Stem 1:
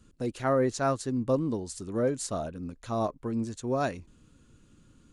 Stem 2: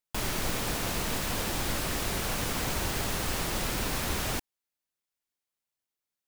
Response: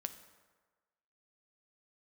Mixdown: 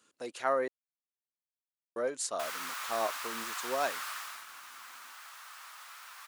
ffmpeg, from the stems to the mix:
-filter_complex "[0:a]volume=0.5dB,asplit=3[link_01][link_02][link_03];[link_01]atrim=end=0.68,asetpts=PTS-STARTPTS,afade=type=out:start_time=0.676:duration=0.004:curve=hsin[link_04];[link_02]atrim=start=0.68:end=1.96,asetpts=PTS-STARTPTS,volume=0[link_05];[link_03]atrim=start=1.96,asetpts=PTS-STARTPTS,afade=type=in:duration=0.004:curve=hsin[link_06];[link_04][link_05][link_06]concat=n=3:v=0:a=1[link_07];[1:a]flanger=delay=9.2:depth=2.7:regen=-68:speed=1.1:shape=sinusoidal,highpass=frequency=1200:width_type=q:width=2.9,adelay=2250,volume=-3.5dB,afade=type=out:start_time=4.09:duration=0.37:silence=0.298538[link_08];[link_07][link_08]amix=inputs=2:normalize=0,highpass=650"

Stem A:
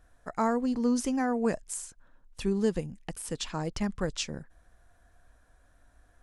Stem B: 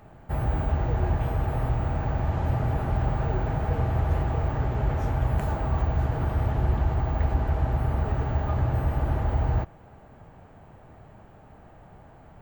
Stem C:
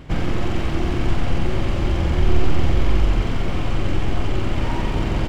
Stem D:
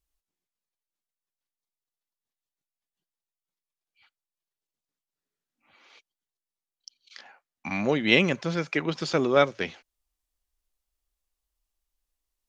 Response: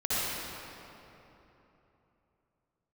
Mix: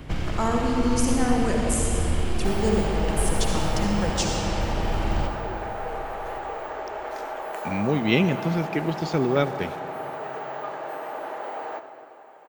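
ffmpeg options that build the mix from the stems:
-filter_complex "[0:a]highshelf=frequency=5000:gain=9,volume=-2dB,asplit=2[link_01][link_02];[link_02]volume=-7dB[link_03];[1:a]highpass=frequency=410:width=0.5412,highpass=frequency=410:width=1.3066,adelay=2150,volume=1dB,asplit=2[link_04][link_05];[link_05]volume=-19.5dB[link_06];[2:a]acrossover=split=140|600|3000[link_07][link_08][link_09][link_10];[link_07]acompressor=threshold=-25dB:ratio=4[link_11];[link_08]acompressor=threshold=-37dB:ratio=4[link_12];[link_09]acompressor=threshold=-41dB:ratio=4[link_13];[link_10]acompressor=threshold=-45dB:ratio=4[link_14];[link_11][link_12][link_13][link_14]amix=inputs=4:normalize=0,volume=-1dB,asplit=2[link_15][link_16];[link_16]volume=-13.5dB[link_17];[3:a]asubboost=boost=6.5:cutoff=160,acrusher=bits=7:mix=0:aa=0.000001,equalizer=frequency=390:width=1.5:gain=9,volume=-5dB,asplit=2[link_18][link_19];[link_19]volume=-23.5dB[link_20];[4:a]atrim=start_sample=2205[link_21];[link_03][link_06][link_17][link_20]amix=inputs=4:normalize=0[link_22];[link_22][link_21]afir=irnorm=-1:irlink=0[link_23];[link_01][link_04][link_15][link_18][link_23]amix=inputs=5:normalize=0"

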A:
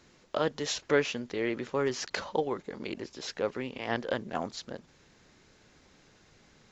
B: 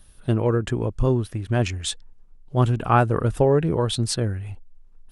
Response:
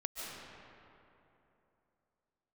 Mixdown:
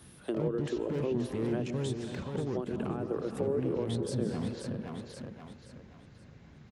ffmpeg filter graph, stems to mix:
-filter_complex "[0:a]bass=frequency=250:gain=15,treble=frequency=4000:gain=-11,asoftclip=type=hard:threshold=-26.5dB,volume=-1.5dB,asplit=2[link_01][link_02];[link_02]volume=-6.5dB[link_03];[1:a]highpass=frequency=330:width=0.5412,highpass=frequency=330:width=1.3066,alimiter=limit=-13dB:level=0:latency=1:release=137,acompressor=threshold=-26dB:ratio=2.5,volume=-2.5dB,asplit=3[link_04][link_05][link_06];[link_05]volume=-6.5dB[link_07];[link_06]volume=-13.5dB[link_08];[2:a]atrim=start_sample=2205[link_09];[link_07][link_09]afir=irnorm=-1:irlink=0[link_10];[link_03][link_08]amix=inputs=2:normalize=0,aecho=0:1:525|1050|1575|2100|2625:1|0.35|0.122|0.0429|0.015[link_11];[link_01][link_04][link_10][link_11]amix=inputs=4:normalize=0,highpass=64,acrossover=split=440[link_12][link_13];[link_13]acompressor=threshold=-44dB:ratio=6[link_14];[link_12][link_14]amix=inputs=2:normalize=0"

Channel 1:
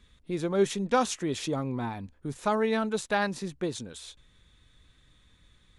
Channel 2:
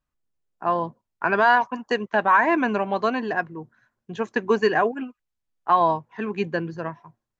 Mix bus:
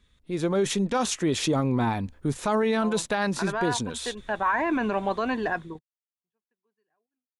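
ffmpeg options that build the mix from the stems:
ffmpeg -i stem1.wav -i stem2.wav -filter_complex "[0:a]dynaudnorm=framelen=150:gausssize=5:maxgain=14dB,volume=-4.5dB,asplit=2[link_01][link_02];[1:a]dynaudnorm=framelen=630:gausssize=3:maxgain=9dB,adelay=2150,volume=-6.5dB,afade=type=in:start_time=4.24:duration=0.42:silence=0.354813[link_03];[link_02]apad=whole_len=421042[link_04];[link_03][link_04]sidechaingate=range=-57dB:threshold=-57dB:ratio=16:detection=peak[link_05];[link_01][link_05]amix=inputs=2:normalize=0,alimiter=limit=-16dB:level=0:latency=1:release=25" out.wav

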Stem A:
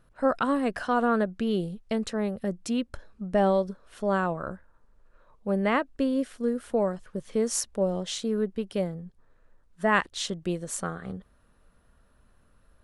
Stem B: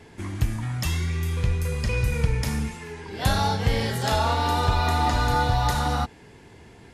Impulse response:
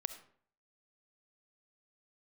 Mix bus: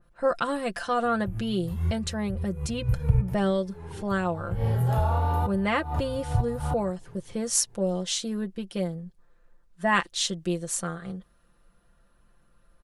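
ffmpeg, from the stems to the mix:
-filter_complex "[0:a]aecho=1:1:5.8:0.65,adynamicequalizer=threshold=0.00794:dfrequency=2500:dqfactor=0.7:tfrequency=2500:tqfactor=0.7:attack=5:release=100:ratio=0.375:range=3.5:mode=boostabove:tftype=highshelf,volume=-2.5dB,asplit=2[link_01][link_02];[1:a]equalizer=frequency=125:width_type=o:width=1:gain=9,equalizer=frequency=250:width_type=o:width=1:gain=-9,equalizer=frequency=2000:width_type=o:width=1:gain=-11,equalizer=frequency=4000:width_type=o:width=1:gain=-11,equalizer=frequency=8000:width_type=o:width=1:gain=-10,acrossover=split=130[link_03][link_04];[link_04]acompressor=threshold=-23dB:ratio=6[link_05];[link_03][link_05]amix=inputs=2:normalize=0,equalizer=frequency=5500:width_type=o:width=0.87:gain=-11.5,adelay=850,volume=-0.5dB[link_06];[link_02]apad=whole_len=343145[link_07];[link_06][link_07]sidechaincompress=threshold=-44dB:ratio=10:attack=9.1:release=120[link_08];[link_01][link_08]amix=inputs=2:normalize=0"

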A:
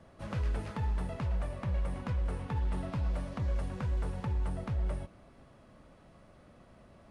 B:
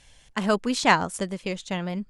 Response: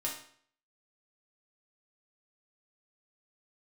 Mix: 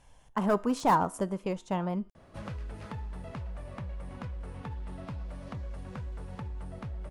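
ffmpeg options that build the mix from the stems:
-filter_complex "[0:a]acompressor=threshold=-38dB:ratio=6,adelay=2150,volume=1.5dB[link_01];[1:a]asoftclip=type=hard:threshold=-19dB,equalizer=frequency=1000:width_type=o:width=1:gain=7,equalizer=frequency=2000:width_type=o:width=1:gain=-8,equalizer=frequency=4000:width_type=o:width=1:gain=-11,equalizer=frequency=8000:width_type=o:width=1:gain=-7,volume=-3dB,asplit=2[link_02][link_03];[link_03]volume=-16.5dB[link_04];[2:a]atrim=start_sample=2205[link_05];[link_04][link_05]afir=irnorm=-1:irlink=0[link_06];[link_01][link_02][link_06]amix=inputs=3:normalize=0"

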